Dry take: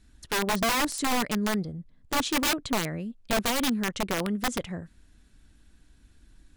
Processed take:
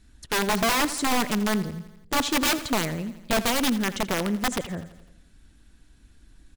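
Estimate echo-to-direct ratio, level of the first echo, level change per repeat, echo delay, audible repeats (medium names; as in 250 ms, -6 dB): -13.5 dB, -15.0 dB, -5.0 dB, 84 ms, 5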